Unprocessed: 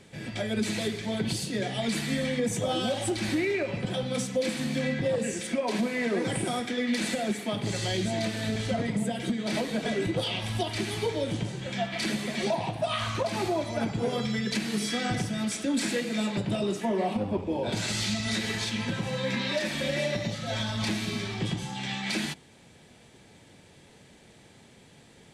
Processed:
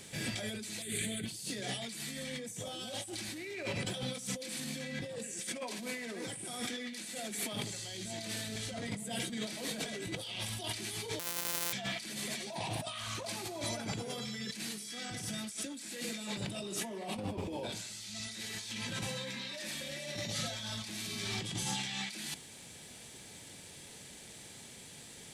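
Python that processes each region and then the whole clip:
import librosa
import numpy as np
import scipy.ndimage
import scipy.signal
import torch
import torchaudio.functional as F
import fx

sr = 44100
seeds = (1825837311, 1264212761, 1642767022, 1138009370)

y = fx.chain(x, sr, fx.peak_eq(hz=8700.0, db=12.0, octaves=0.6),
    fx.fixed_phaser(hz=2300.0, stages=4), at=(0.82, 1.26))
y = fx.chain(y, sr, fx.sample_sort(block=256),
    fx.highpass(hz=740.0, slope=6),
    fx.doubler(ms=31.0, db=-12.0), at=(11.19, 11.73))
y = scipy.signal.lfilter([1.0, -0.8], [1.0], y)
y = fx.over_compress(y, sr, threshold_db=-47.0, ratio=-1.0)
y = F.gain(torch.from_numpy(y), 6.5).numpy()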